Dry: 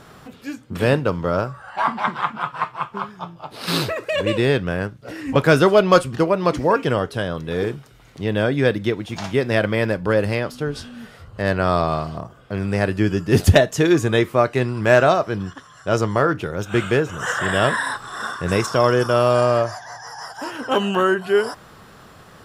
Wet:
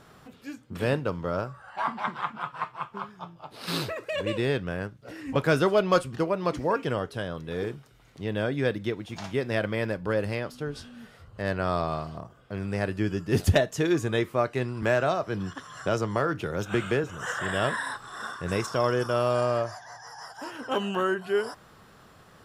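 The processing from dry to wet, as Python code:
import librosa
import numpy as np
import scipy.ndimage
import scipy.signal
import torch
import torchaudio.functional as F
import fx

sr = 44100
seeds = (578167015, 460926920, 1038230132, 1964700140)

y = fx.band_squash(x, sr, depth_pct=70, at=(14.82, 17.04))
y = F.gain(torch.from_numpy(y), -8.5).numpy()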